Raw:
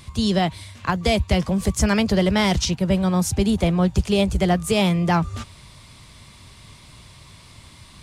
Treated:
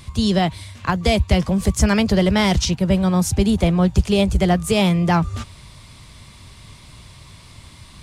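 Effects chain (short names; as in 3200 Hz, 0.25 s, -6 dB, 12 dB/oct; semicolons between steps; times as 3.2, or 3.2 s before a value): low shelf 110 Hz +4 dB; gain +1.5 dB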